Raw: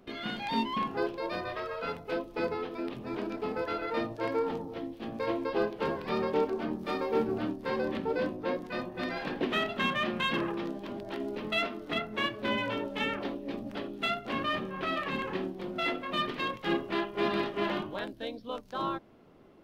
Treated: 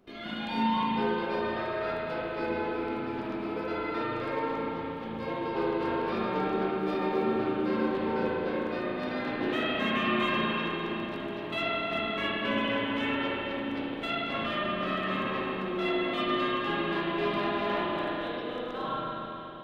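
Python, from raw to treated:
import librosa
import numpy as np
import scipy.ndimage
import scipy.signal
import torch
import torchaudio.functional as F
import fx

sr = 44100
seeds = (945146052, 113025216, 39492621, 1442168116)

y = fx.rev_spring(x, sr, rt60_s=3.5, pass_ms=(36, 58), chirp_ms=20, drr_db=-7.5)
y = fx.quant_float(y, sr, bits=8)
y = y * 10.0 ** (-5.5 / 20.0)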